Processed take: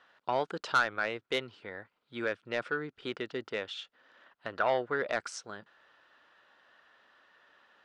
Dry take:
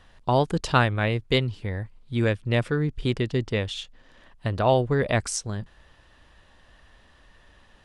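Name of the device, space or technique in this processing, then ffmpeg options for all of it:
intercom: -filter_complex "[0:a]highpass=390,lowpass=4500,equalizer=frequency=1400:width_type=o:width=0.34:gain=10,asoftclip=type=tanh:threshold=-12.5dB,asettb=1/sr,asplit=3[link_01][link_02][link_03];[link_01]atrim=end=4.534[link_04];[link_02]atrim=start=4.53:end=4.96,asetpts=PTS-STARTPTS,afade=type=in:duration=0.004:curve=qsin,afade=type=out:start_time=0.426:duration=0.004:curve=qsin,equalizer=frequency=1700:width_type=o:width=0.77:gain=6[link_05];[link_03]atrim=start=4.956[link_06];[link_04][link_05]acrossfade=duration=0.004:curve1=hsin:curve2=qsin[link_07];[link_07][link_06]acrossfade=duration=0.004:curve1=qsin:curve2=hsin,volume=-6dB"

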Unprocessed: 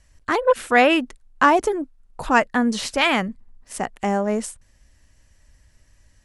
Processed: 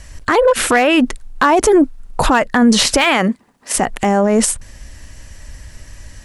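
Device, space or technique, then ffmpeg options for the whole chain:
loud club master: -filter_complex "[0:a]asettb=1/sr,asplit=3[link_01][link_02][link_03];[link_01]atrim=end=3.044[link_04];[link_02]atrim=start=3.04:end=3.75,asetpts=PTS-STARTPTS,afade=type=in:duration=0.004:curve=qsin,afade=type=out:start_time=0.706:duration=0.004:curve=qsin,highpass=270[link_05];[link_03]atrim=start=3.746[link_06];[link_04][link_05]acrossfade=duration=0.004:curve1=hsin:curve2=qsin[link_07];[link_07][link_06]acrossfade=duration=0.004:curve1=qsin:curve2=hsin,acompressor=threshold=-19dB:ratio=2.5,asoftclip=type=hard:threshold=-12.5dB,alimiter=level_in=23.5dB:limit=-1dB:release=50:level=0:latency=1,volume=-3.5dB"

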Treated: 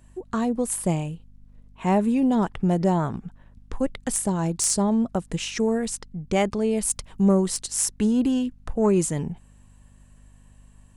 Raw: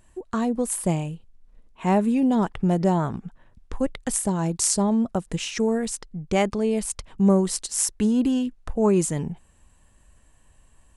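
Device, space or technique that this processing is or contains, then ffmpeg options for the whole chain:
valve amplifier with mains hum: -filter_complex "[0:a]asettb=1/sr,asplit=3[link_01][link_02][link_03];[link_01]atrim=end=6.834[link_04];[link_02]atrim=start=6.83:end=7.25,asetpts=PTS-STARTPTS,afade=type=in:duration=0.004:curve=qsin,afade=type=out:start_time=0.416:duration=0.004:curve=qsin,highshelf=frequency=7300:gain=9.5[link_05];[link_03]atrim=start=7.246[link_06];[link_04][link_05]acrossfade=duration=0.004:curve1=hsin:curve2=qsin[link_07];[link_07][link_06]acrossfade=duration=0.004:curve1=qsin:curve2=hsin,aeval=exprs='(tanh(2.24*val(0)+0.1)-tanh(0.1))/2.24':channel_layout=same,aeval=exprs='val(0)+0.00282*(sin(2*PI*50*n/s)+sin(2*PI*2*50*n/s)/2+sin(2*PI*3*50*n/s)/3+sin(2*PI*4*50*n/s)/4+sin(2*PI*5*50*n/s)/5)':channel_layout=same"

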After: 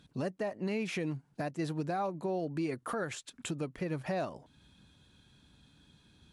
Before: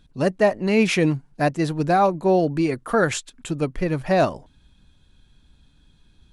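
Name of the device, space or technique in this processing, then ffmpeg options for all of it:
podcast mastering chain: -af "highpass=100,deesser=0.6,acompressor=threshold=-36dB:ratio=2,alimiter=level_in=1.5dB:limit=-24dB:level=0:latency=1:release=215,volume=-1.5dB" -ar 32000 -c:a libmp3lame -b:a 96k

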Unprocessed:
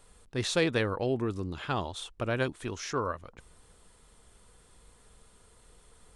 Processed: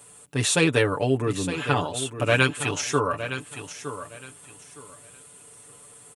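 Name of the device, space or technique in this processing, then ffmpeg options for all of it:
budget condenser microphone: -filter_complex "[0:a]asettb=1/sr,asplit=3[link_01][link_02][link_03];[link_01]atrim=end=2.254[link_04];[link_02]atrim=start=2.25:end=2.81,asetpts=PTS-STARTPTS,afade=type=in:duration=0.004:curve=qsin,afade=type=out:start_time=0.556:duration=0.004:curve=qsin,equalizer=frequency=3200:width_type=o:width=2.8:gain=8[link_05];[link_03]atrim=start=2.806[link_06];[link_04][link_05]acrossfade=duration=0.004:curve1=hsin:curve2=qsin[link_07];[link_07][link_06]acrossfade=duration=0.004:curve1=qsin:curve2=hsin,highpass=frequency=84:width=0.5412,highpass=frequency=84:width=1.3066,equalizer=frequency=2700:width_type=o:width=0.33:gain=5,highshelf=frequency=6400:width_type=q:width=1.5:gain=7.5,aecho=1:1:6.9:0.79,aecho=1:1:913|1826|2739:0.282|0.0648|0.0149,volume=5dB"

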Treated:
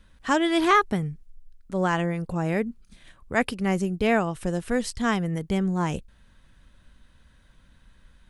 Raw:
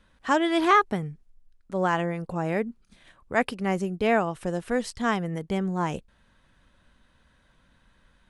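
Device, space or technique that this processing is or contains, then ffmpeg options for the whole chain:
smiley-face EQ: -af "lowshelf=frequency=99:gain=8,equalizer=frequency=780:width_type=o:width=1.9:gain=-3.5,highshelf=frequency=6700:gain=4.5,volume=2dB"

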